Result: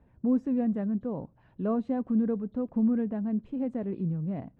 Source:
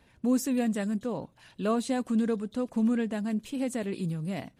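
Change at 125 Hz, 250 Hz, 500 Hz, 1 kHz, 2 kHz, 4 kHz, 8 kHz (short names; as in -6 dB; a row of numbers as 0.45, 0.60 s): +1.5 dB, +0.5 dB, -2.0 dB, -4.5 dB, under -10 dB, under -20 dB, under -35 dB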